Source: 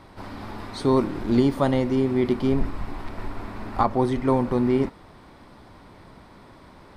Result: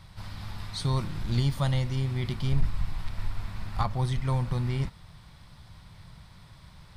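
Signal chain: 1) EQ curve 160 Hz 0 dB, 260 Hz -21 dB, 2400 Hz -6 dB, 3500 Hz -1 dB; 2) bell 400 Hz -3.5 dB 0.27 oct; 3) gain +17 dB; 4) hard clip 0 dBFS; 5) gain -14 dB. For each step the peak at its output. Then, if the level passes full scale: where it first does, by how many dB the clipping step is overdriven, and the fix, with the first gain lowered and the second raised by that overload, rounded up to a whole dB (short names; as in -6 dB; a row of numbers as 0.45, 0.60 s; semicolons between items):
-12.0, -12.0, +5.0, 0.0, -14.0 dBFS; step 3, 5.0 dB; step 3 +12 dB, step 5 -9 dB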